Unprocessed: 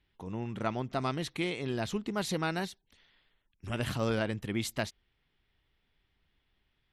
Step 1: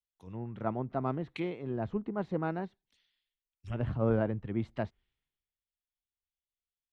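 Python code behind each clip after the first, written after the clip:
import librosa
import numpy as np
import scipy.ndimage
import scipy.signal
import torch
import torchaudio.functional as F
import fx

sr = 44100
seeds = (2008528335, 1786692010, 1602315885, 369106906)

y = fx.env_lowpass_down(x, sr, base_hz=1000.0, full_db=-31.0)
y = fx.band_widen(y, sr, depth_pct=100)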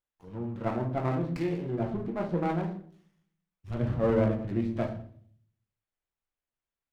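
y = fx.room_shoebox(x, sr, seeds[0], volume_m3=64.0, walls='mixed', distance_m=0.7)
y = fx.running_max(y, sr, window=9)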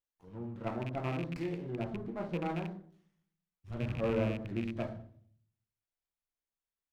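y = fx.rattle_buzz(x, sr, strikes_db=-29.0, level_db=-27.0)
y = y * 10.0 ** (-6.5 / 20.0)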